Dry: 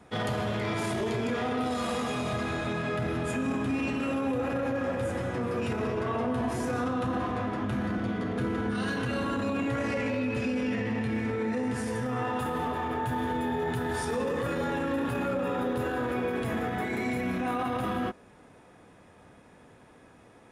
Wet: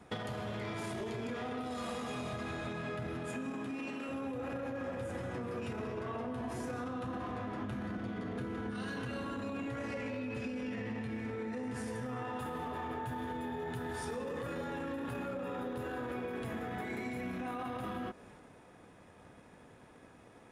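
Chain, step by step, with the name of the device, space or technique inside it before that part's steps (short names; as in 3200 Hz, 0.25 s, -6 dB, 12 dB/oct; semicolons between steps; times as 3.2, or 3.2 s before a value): drum-bus smash (transient shaper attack +8 dB, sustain +4 dB; compressor, threshold -32 dBFS, peak gain reduction 10 dB; soft clip -23.5 dBFS, distortion -28 dB); 3.17–4.08 HPF 95 Hz -> 270 Hz 12 dB/oct; gain -3.5 dB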